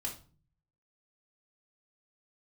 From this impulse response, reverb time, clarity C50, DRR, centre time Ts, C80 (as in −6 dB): 0.40 s, 9.5 dB, −1.5 dB, 18 ms, 15.5 dB